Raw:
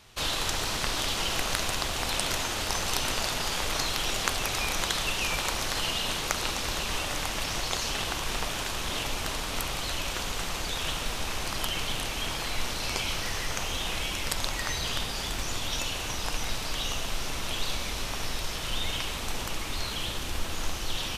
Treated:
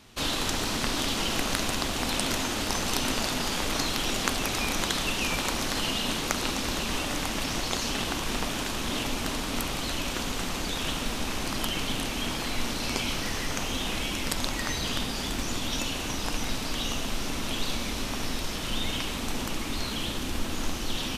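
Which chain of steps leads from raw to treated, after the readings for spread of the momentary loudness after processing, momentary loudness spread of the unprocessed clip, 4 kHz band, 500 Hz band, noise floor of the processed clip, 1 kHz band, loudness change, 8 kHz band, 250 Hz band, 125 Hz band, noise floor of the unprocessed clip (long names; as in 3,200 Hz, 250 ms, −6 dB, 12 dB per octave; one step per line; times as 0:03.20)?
4 LU, 5 LU, 0.0 dB, +2.0 dB, −32 dBFS, +0.5 dB, +0.5 dB, 0.0 dB, +8.5 dB, +1.5 dB, −34 dBFS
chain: parametric band 250 Hz +11 dB 0.91 octaves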